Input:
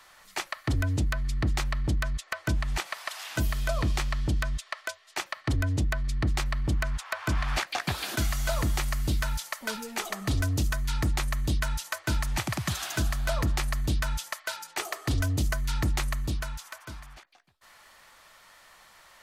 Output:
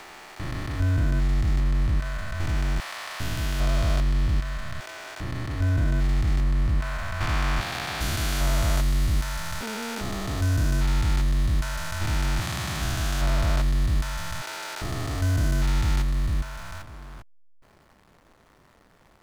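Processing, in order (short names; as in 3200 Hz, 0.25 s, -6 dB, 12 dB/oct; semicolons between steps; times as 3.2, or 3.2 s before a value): stepped spectrum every 0.4 s; backlash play -45.5 dBFS; gain +6.5 dB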